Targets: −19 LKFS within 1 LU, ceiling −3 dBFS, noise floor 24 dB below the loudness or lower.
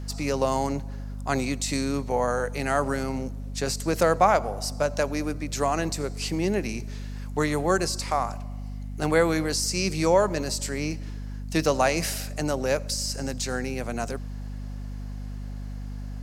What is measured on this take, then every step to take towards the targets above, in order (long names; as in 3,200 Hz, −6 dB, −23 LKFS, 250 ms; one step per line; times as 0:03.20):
mains hum 50 Hz; hum harmonics up to 250 Hz; level of the hum −32 dBFS; integrated loudness −26.5 LKFS; sample peak −6.5 dBFS; target loudness −19.0 LKFS
→ mains-hum notches 50/100/150/200/250 Hz
level +7.5 dB
brickwall limiter −3 dBFS